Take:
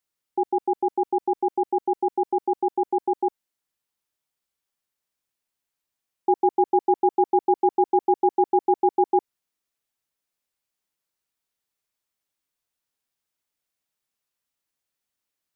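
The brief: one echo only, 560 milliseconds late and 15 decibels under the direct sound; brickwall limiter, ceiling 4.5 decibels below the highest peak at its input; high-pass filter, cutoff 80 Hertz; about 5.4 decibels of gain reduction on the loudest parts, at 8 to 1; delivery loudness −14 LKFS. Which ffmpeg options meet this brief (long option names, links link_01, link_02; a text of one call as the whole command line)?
ffmpeg -i in.wav -af "highpass=80,acompressor=threshold=-20dB:ratio=8,alimiter=limit=-16dB:level=0:latency=1,aecho=1:1:560:0.178,volume=14dB" out.wav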